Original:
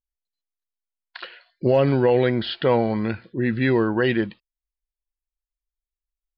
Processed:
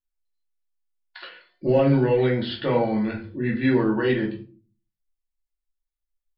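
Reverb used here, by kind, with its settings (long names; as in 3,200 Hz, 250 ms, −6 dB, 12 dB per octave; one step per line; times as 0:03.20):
rectangular room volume 220 cubic metres, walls furnished, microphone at 2.5 metres
level −7.5 dB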